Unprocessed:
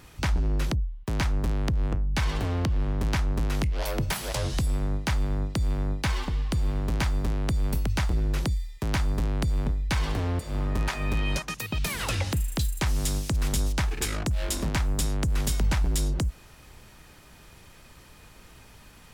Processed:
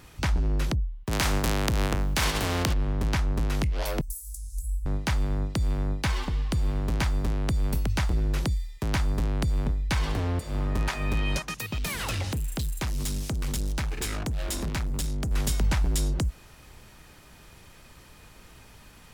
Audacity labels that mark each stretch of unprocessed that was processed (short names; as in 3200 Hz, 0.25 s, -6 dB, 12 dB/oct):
1.110000	2.720000	spectral contrast lowered exponent 0.62
4.010000	4.860000	inverse Chebyshev band-stop 200–2200 Hz, stop band 70 dB
11.470000	15.310000	hard clip -26 dBFS